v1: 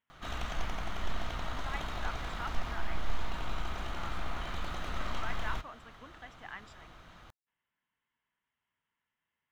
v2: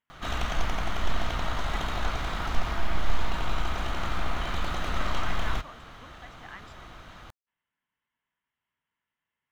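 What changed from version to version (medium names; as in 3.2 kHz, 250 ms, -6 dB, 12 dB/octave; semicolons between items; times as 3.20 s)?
background +7.5 dB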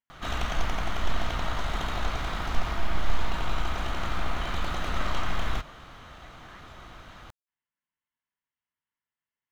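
speech -8.5 dB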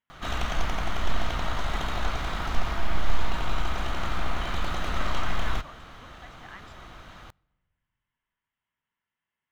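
speech +5.0 dB; reverb: on, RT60 1.4 s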